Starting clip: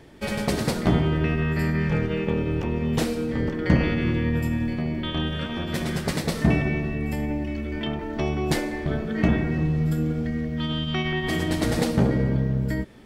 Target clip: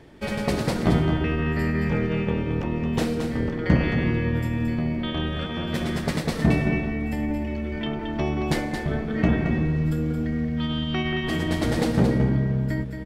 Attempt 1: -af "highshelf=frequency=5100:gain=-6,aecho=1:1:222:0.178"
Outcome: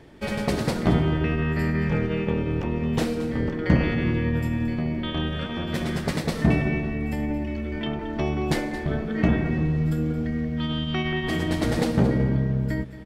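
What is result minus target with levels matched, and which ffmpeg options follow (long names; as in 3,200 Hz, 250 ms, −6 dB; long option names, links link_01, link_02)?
echo-to-direct −7.5 dB
-af "highshelf=frequency=5100:gain=-6,aecho=1:1:222:0.422"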